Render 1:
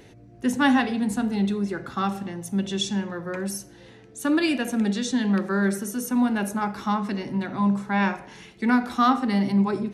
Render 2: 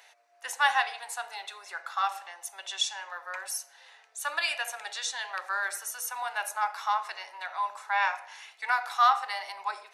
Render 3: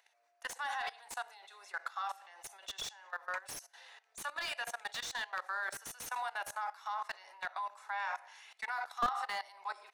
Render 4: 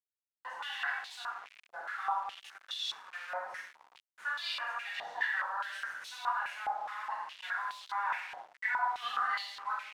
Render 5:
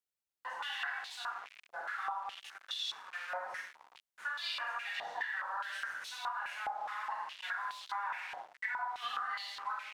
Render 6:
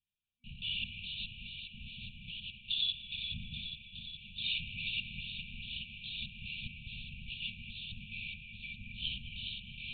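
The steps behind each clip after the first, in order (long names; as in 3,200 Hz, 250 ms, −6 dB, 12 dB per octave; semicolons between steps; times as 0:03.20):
Butterworth high-pass 710 Hz 36 dB per octave; notch filter 3,200 Hz, Q 28
dynamic equaliser 2,500 Hz, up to −5 dB, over −49 dBFS, Q 3.9; output level in coarse steps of 19 dB; slew-rate limiting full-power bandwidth 47 Hz; level +1 dB
rectangular room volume 420 cubic metres, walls mixed, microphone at 4.9 metres; bit reduction 6 bits; band-pass on a step sequencer 4.8 Hz 740–3,800 Hz
downward compressor 10 to 1, threshold −35 dBFS, peak gain reduction 9 dB; level +1 dB
linear-prediction vocoder at 8 kHz whisper; delay that swaps between a low-pass and a high-pass 208 ms, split 2,500 Hz, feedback 83%, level −6 dB; brick-wall band-stop 240–2,300 Hz; level +6.5 dB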